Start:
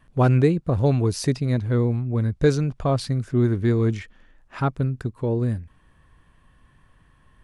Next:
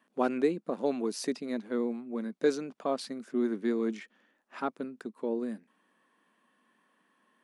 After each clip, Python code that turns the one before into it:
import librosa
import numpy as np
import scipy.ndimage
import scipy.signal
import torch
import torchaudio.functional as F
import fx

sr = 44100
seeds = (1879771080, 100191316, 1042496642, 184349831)

y = scipy.signal.sosfilt(scipy.signal.ellip(4, 1.0, 50, 210.0, 'highpass', fs=sr, output='sos'), x)
y = F.gain(torch.from_numpy(y), -6.5).numpy()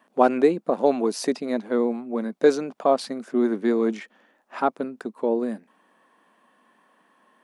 y = fx.peak_eq(x, sr, hz=730.0, db=7.5, octaves=1.3)
y = F.gain(torch.from_numpy(y), 6.0).numpy()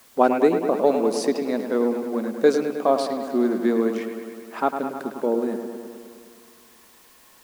y = fx.dmg_noise_colour(x, sr, seeds[0], colour='white', level_db=-54.0)
y = fx.echo_wet_lowpass(y, sr, ms=104, feedback_pct=72, hz=3200.0, wet_db=-8.0)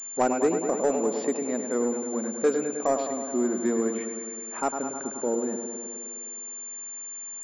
y = 10.0 ** (-9.5 / 20.0) * np.tanh(x / 10.0 ** (-9.5 / 20.0))
y = fx.pwm(y, sr, carrier_hz=7200.0)
y = F.gain(torch.from_numpy(y), -4.0).numpy()